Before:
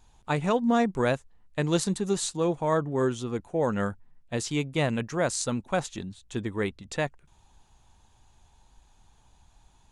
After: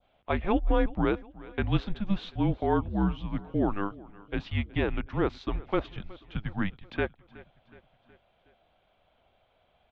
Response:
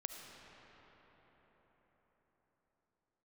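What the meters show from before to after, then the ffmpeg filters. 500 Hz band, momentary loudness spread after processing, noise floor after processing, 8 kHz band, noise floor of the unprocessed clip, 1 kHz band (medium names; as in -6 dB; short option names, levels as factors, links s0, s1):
-4.5 dB, 10 LU, -69 dBFS, under -35 dB, -62 dBFS, -2.5 dB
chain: -af "highpass=f=160:t=q:w=0.5412,highpass=f=160:t=q:w=1.307,lowpass=f=3600:t=q:w=0.5176,lowpass=f=3600:t=q:w=0.7071,lowpass=f=3600:t=q:w=1.932,afreqshift=-200,aecho=1:1:369|738|1107|1476:0.0891|0.0481|0.026|0.014,adynamicequalizer=threshold=0.00501:dfrequency=2100:dqfactor=0.85:tfrequency=2100:tqfactor=0.85:attack=5:release=100:ratio=0.375:range=2:mode=cutabove:tftype=bell"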